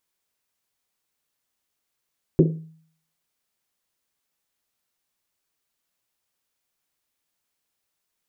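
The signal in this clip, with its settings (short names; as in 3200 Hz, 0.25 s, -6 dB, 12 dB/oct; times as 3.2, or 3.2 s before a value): Risset drum, pitch 160 Hz, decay 0.59 s, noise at 350 Hz, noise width 270 Hz, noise 35%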